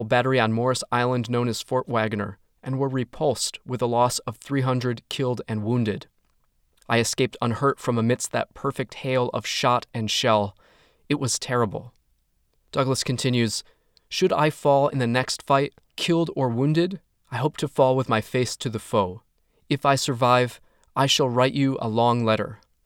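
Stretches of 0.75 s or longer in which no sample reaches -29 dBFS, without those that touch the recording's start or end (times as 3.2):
6.02–6.89
11.79–12.74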